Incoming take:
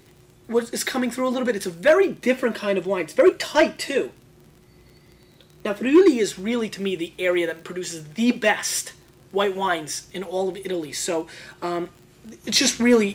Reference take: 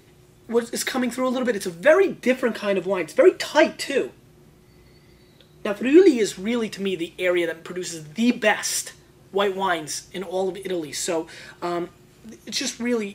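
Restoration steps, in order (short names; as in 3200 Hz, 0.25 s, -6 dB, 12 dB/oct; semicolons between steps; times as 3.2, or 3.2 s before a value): clip repair -8 dBFS; de-click; gain 0 dB, from 12.44 s -7.5 dB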